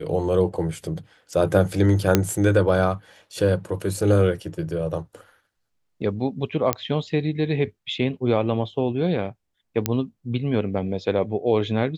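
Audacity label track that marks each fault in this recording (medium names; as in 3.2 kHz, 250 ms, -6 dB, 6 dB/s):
2.150000	2.150000	pop -2 dBFS
6.730000	6.730000	pop -4 dBFS
9.860000	9.860000	pop -5 dBFS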